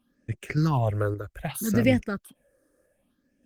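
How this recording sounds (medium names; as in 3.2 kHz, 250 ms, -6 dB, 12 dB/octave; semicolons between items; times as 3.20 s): random-step tremolo; phasing stages 6, 0.65 Hz, lowest notch 200–1100 Hz; Opus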